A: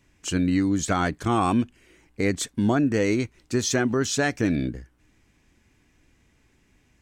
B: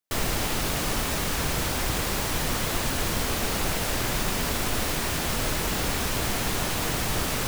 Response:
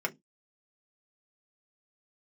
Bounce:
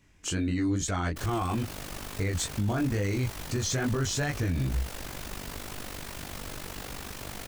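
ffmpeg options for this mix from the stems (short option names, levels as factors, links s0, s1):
-filter_complex "[0:a]asubboost=boost=9.5:cutoff=89,flanger=delay=19.5:depth=4.2:speed=2.3,volume=1.41[s0];[1:a]tremolo=f=49:d=0.75,adelay=1050,volume=0.335[s1];[s0][s1]amix=inputs=2:normalize=0,alimiter=limit=0.0944:level=0:latency=1:release=69"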